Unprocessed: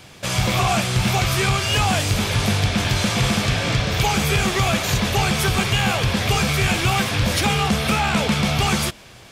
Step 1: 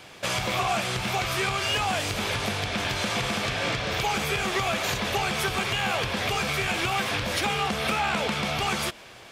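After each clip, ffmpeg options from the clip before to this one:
-af "acompressor=threshold=-20dB:ratio=6,bass=f=250:g=-10,treble=f=4k:g=-5"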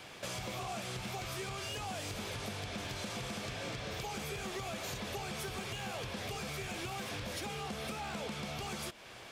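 -filter_complex "[0:a]acrossover=split=650|4400[a][b][c];[b]asoftclip=type=tanh:threshold=-33dB[d];[a][d][c]amix=inputs=3:normalize=0,acompressor=threshold=-40dB:ratio=2,volume=-3.5dB"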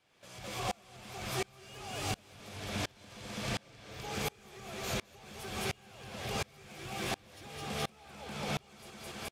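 -af "aecho=1:1:212|424|636|848|1060|1272|1484:0.668|0.361|0.195|0.105|0.0568|0.0307|0.0166,aeval=exprs='val(0)*pow(10,-31*if(lt(mod(-1.4*n/s,1),2*abs(-1.4)/1000),1-mod(-1.4*n/s,1)/(2*abs(-1.4)/1000),(mod(-1.4*n/s,1)-2*abs(-1.4)/1000)/(1-2*abs(-1.4)/1000))/20)':c=same,volume=6.5dB"

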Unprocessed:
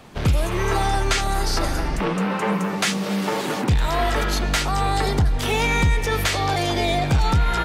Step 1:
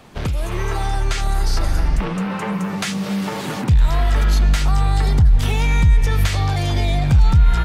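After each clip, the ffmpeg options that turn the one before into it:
-af "acompressor=threshold=-20dB:ratio=6,asubboost=boost=5:cutoff=160"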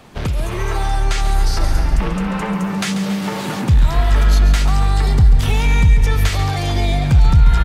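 -af "aecho=1:1:139|278|417|556|695|834:0.299|0.155|0.0807|0.042|0.0218|0.0114,volume=1.5dB"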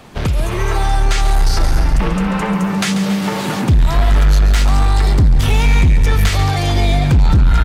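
-af "asoftclip=type=hard:threshold=-10.5dB,volume=3.5dB"

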